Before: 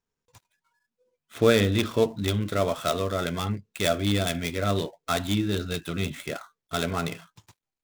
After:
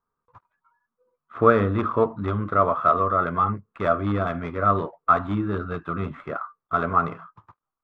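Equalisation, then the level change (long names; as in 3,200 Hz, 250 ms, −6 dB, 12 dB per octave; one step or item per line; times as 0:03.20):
low-pass with resonance 1,200 Hz, resonance Q 7.2
0.0 dB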